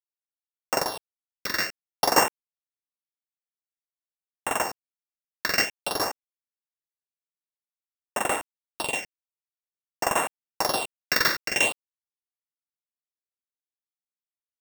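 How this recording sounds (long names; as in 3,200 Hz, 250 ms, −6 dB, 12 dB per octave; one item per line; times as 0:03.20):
a buzz of ramps at a fixed pitch in blocks of 16 samples
phaser sweep stages 6, 0.51 Hz, lowest notch 770–4,700 Hz
a quantiser's noise floor 10 bits, dither none
amplitude modulation by smooth noise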